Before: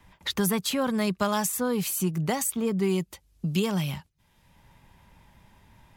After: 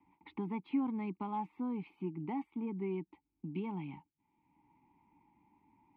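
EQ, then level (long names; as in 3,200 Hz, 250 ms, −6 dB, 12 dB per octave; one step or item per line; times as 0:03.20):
formant filter u
high-frequency loss of the air 480 metres
parametric band 7,800 Hz −7.5 dB 1.1 octaves
+3.5 dB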